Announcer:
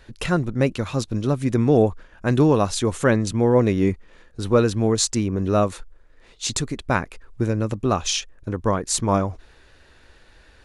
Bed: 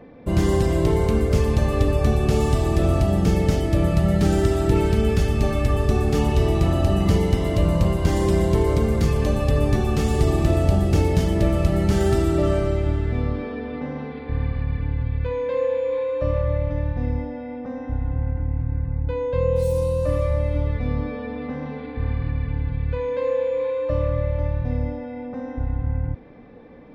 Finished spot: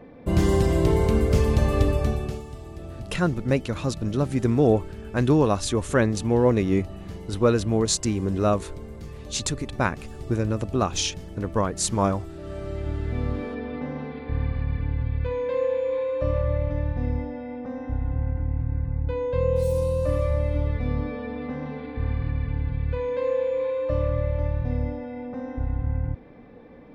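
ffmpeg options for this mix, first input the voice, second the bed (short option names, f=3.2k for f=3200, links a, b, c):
-filter_complex "[0:a]adelay=2900,volume=-2.5dB[a];[1:a]volume=16dB,afade=t=out:st=1.81:d=0.62:silence=0.125893,afade=t=in:st=12.42:d=0.98:silence=0.141254[b];[a][b]amix=inputs=2:normalize=0"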